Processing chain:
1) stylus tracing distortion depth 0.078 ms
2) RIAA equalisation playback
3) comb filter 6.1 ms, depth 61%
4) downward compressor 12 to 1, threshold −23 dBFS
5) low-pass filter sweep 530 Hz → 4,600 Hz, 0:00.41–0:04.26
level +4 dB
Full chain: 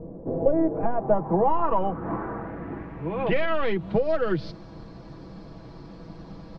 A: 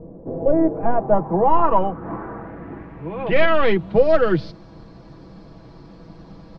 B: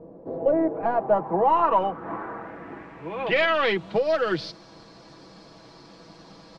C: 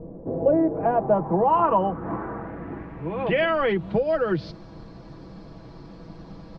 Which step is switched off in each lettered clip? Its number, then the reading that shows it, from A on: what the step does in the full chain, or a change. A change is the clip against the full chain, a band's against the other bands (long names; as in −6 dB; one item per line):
4, average gain reduction 2.5 dB
2, 125 Hz band −11.5 dB
1, 125 Hz band −2.5 dB